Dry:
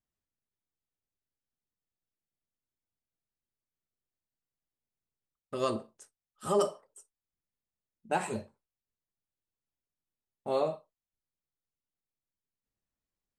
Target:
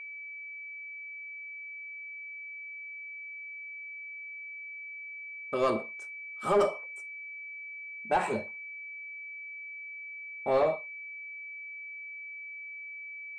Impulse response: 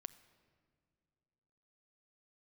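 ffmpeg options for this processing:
-filter_complex "[0:a]aeval=exprs='val(0)+0.00562*sin(2*PI*2300*n/s)':c=same,asplit=2[a][b];[b]highpass=f=720:p=1,volume=17dB,asoftclip=type=tanh:threshold=-14dB[c];[a][c]amix=inputs=2:normalize=0,lowpass=f=1.2k:p=1,volume=-6dB"

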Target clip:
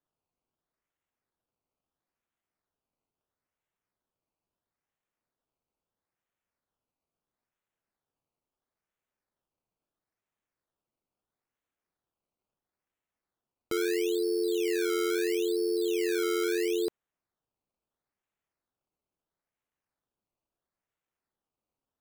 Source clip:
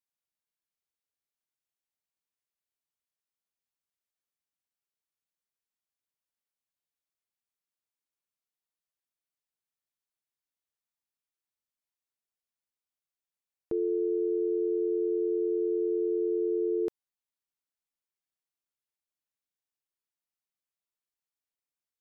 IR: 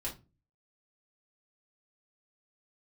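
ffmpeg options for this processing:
-af "acrusher=samples=17:mix=1:aa=0.000001:lfo=1:lforange=17:lforate=0.75,aeval=exprs='0.0794*(cos(1*acos(clip(val(0)/0.0794,-1,1)))-cos(1*PI/2))+0.000501*(cos(8*acos(clip(val(0)/0.0794,-1,1)))-cos(8*PI/2))':c=same"

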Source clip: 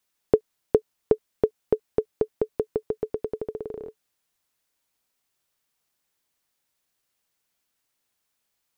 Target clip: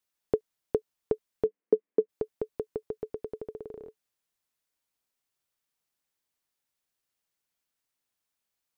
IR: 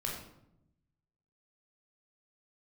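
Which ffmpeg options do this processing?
-filter_complex "[0:a]asplit=3[a][b][c];[a]afade=t=out:st=1.44:d=0.02[d];[b]highpass=f=200:w=0.5412,highpass=f=200:w=1.3066,equalizer=f=200:t=q:w=4:g=9,equalizer=f=300:t=q:w=4:g=7,equalizer=f=450:t=q:w=4:g=8,equalizer=f=810:t=q:w=4:g=-7,equalizer=f=1.4k:t=q:w=4:g=-7,lowpass=f=2.1k:w=0.5412,lowpass=f=2.1k:w=1.3066,afade=t=in:st=1.44:d=0.02,afade=t=out:st=2.08:d=0.02[e];[c]afade=t=in:st=2.08:d=0.02[f];[d][e][f]amix=inputs=3:normalize=0,volume=-7.5dB"

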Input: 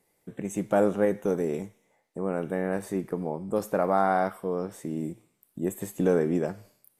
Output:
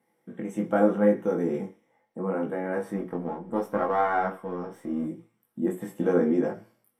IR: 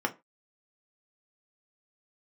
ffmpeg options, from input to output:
-filter_complex "[0:a]asettb=1/sr,asplit=3[a][b][c];[a]atrim=end=2.964[d];[b]atrim=start=2.96:end=5.06,asetpts=PTS-STARTPTS,afade=t=in:d=0.004:c=qsin,afade=t=out:st=2.096:d=0.004:c=qsin,aeval=exprs='if(lt(val(0),0),0.447*val(0),val(0))':c=same[e];[c]atrim=start=5.056[f];[d][e]acrossfade=d=0.004:c1=hsin:c2=qsin[g];[g][f]acrossfade=d=0.004:c1=qsin:c2=hsin[h];[1:a]atrim=start_sample=2205[i];[h][i]afir=irnorm=-1:irlink=0,flanger=delay=18:depth=5.5:speed=0.75,volume=-5dB"

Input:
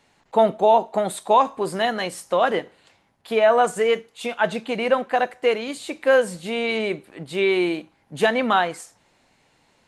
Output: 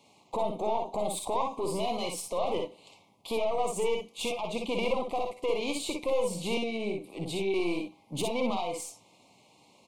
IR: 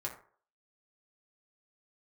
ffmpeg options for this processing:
-filter_complex "[0:a]highpass=120,alimiter=limit=-21.5dB:level=0:latency=1:release=236,asettb=1/sr,asplit=3[a][b][c];[a]atrim=end=4.774[d];[b]atrim=start=4.77:end=5.33,asetpts=PTS-STARTPTS,afade=t=in:d=0.004:c=qsin,afade=t=out:st=0.556:d=0.004:c=qsin,aeval=exprs='0.0841*(cos(1*acos(clip(val(0)/0.0841,-1,1)))-cos(1*PI/2))+0.0015*(cos(8*acos(clip(val(0)/0.0841,-1,1)))-cos(8*PI/2))':c=same[e];[c]atrim=start=5.326[f];[d][e]acrossfade=d=0.004:c1=hsin:c2=qsin[g];[g][f]acrossfade=d=0.004:c1=qsin:c2=hsin,asettb=1/sr,asplit=3[h][i][j];[h]atrim=end=6.574[k];[i]atrim=start=6.57:end=7.54,asetpts=PTS-STARTPTS,afade=t=in:d=0.004:c=qsin,afade=t=out:st=0.966:d=0.004:c=qsin,acrossover=split=350[l][m];[m]acompressor=threshold=-36dB:ratio=10[n];[l][n]amix=inputs=2:normalize=0[o];[j]atrim=start=7.536[p];[k][o]acrossfade=d=0.004:c1=hsin:c2=qsin[q];[q][p]acrossfade=d=0.004:c1=qsin:c2=hsin,aeval=exprs='(tanh(17.8*val(0)+0.55)-tanh(0.55))/17.8':c=same,asuperstop=centerf=1600:order=8:qfactor=1.5,aecho=1:1:52|62:0.447|0.531,volume=3dB"

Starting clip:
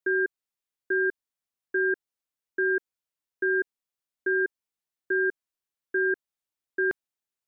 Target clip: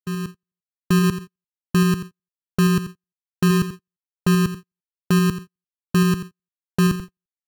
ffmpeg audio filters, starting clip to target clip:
-filter_complex "[0:a]alimiter=limit=-22dB:level=0:latency=1,asplit=3[a][b][c];[a]afade=t=out:st=1.02:d=0.02[d];[b]highpass=f=240:w=0.5412,highpass=f=240:w=1.3066,afade=t=in:st=1.02:d=0.02,afade=t=out:st=3.48:d=0.02[e];[c]afade=t=in:st=3.48:d=0.02[f];[d][e][f]amix=inputs=3:normalize=0,aecho=1:1:86|172|258|344:0.282|0.113|0.0451|0.018,dynaudnorm=f=260:g=3:m=11dB,lowpass=f=1.4k:t=q:w=14,acrusher=samples=31:mix=1:aa=0.000001,agate=range=-45dB:threshold=-25dB:ratio=16:detection=peak,volume=-5dB"

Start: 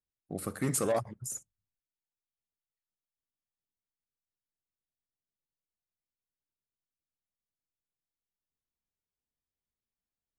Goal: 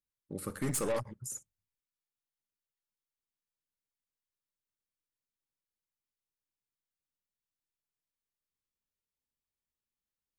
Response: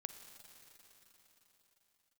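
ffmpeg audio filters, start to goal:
-filter_complex "[0:a]asuperstop=centerf=700:order=8:qfactor=4.3,asettb=1/sr,asplit=3[a][b][c];[a]atrim=end=0.494[d];[b]atrim=start=0.49:end=1.13,asetpts=PTS-STARTPTS,afade=t=in:d=0.004:c=qsin,afade=t=out:st=0.636:d=0.004:c=qsin,aeval=exprs='0.133*(cos(1*acos(clip(val(0)/0.133,-1,1)))-cos(1*PI/2))+0.015*(cos(3*acos(clip(val(0)/0.133,-1,1)))-cos(3*PI/2))+0.0119*(cos(5*acos(clip(val(0)/0.133,-1,1)))-cos(5*PI/2))+0.0106*(cos(8*acos(clip(val(0)/0.133,-1,1)))-cos(8*PI/2))':c=same[e];[c]atrim=start=1.126[f];[d][e]acrossfade=d=0.004:c1=hsin:c2=qsin[g];[g][f]acrossfade=d=0.004:c1=qsin:c2=hsin,volume=-2.5dB"

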